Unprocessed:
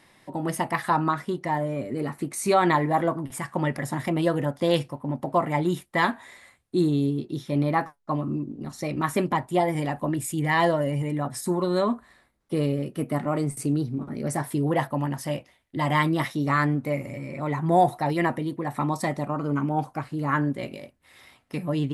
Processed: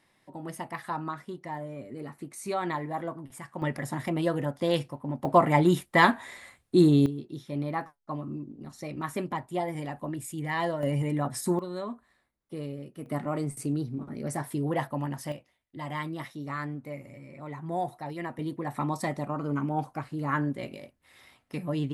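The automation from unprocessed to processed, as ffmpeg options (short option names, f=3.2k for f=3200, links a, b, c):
-af "asetnsamples=n=441:p=0,asendcmd='3.62 volume volume -4dB;5.25 volume volume 3dB;7.06 volume volume -8dB;10.83 volume volume -1dB;11.59 volume volume -12dB;13.06 volume volume -5dB;15.32 volume volume -12dB;18.39 volume volume -4dB',volume=-10.5dB"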